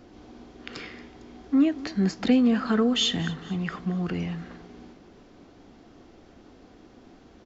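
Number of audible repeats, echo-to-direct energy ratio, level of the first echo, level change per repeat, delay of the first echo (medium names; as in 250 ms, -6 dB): 3, -17.5 dB, -18.5 dB, -7.0 dB, 228 ms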